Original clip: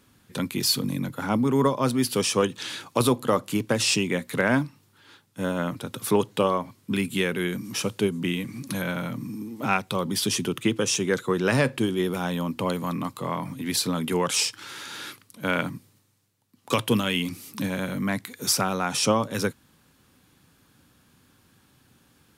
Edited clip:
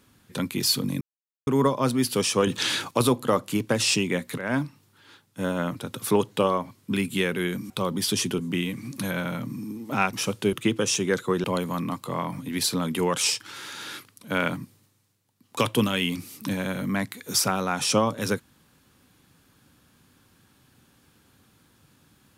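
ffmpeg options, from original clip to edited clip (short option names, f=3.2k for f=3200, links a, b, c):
-filter_complex "[0:a]asplit=11[a][b][c][d][e][f][g][h][i][j][k];[a]atrim=end=1.01,asetpts=PTS-STARTPTS,afade=t=out:st=1.006:d=0.004:c=hsin[l];[b]atrim=start=1.01:end=1.47,asetpts=PTS-STARTPTS,volume=0[m];[c]atrim=start=1.47:end=2.472,asetpts=PTS-STARTPTS,afade=t=in:d=0.004:c=hsin[n];[d]atrim=start=2.468:end=2.912,asetpts=PTS-STARTPTS,volume=8.5dB[o];[e]atrim=start=2.908:end=4.38,asetpts=PTS-STARTPTS,afade=t=out:st=1.468:d=0.004:c=hsin:silence=0.16788[p];[f]atrim=start=4.38:end=7.702,asetpts=PTS-STARTPTS,afade=t=in:d=0.27:silence=0.16788[q];[g]atrim=start=9.838:end=10.532[r];[h]atrim=start=8.098:end=9.842[s];[i]atrim=start=7.698:end=8.102[t];[j]atrim=start=10.528:end=11.442[u];[k]atrim=start=12.568[v];[l][m][n]concat=n=3:v=0:a=1[w];[w][o]acrossfade=d=0.004:c1=hsin:c2=hsin[x];[p][q]concat=n=2:v=0:a=1[y];[x][y]acrossfade=d=0.004:c1=hsin:c2=hsin[z];[z][r]acrossfade=d=0.004:c1=hsin:c2=hsin[aa];[aa][s]acrossfade=d=0.004:c1=hsin:c2=hsin[ab];[ab][t]acrossfade=d=0.004:c1=hsin:c2=hsin[ac];[ac][u]acrossfade=d=0.004:c1=hsin:c2=hsin[ad];[ad][v]acrossfade=d=0.004:c1=hsin:c2=hsin"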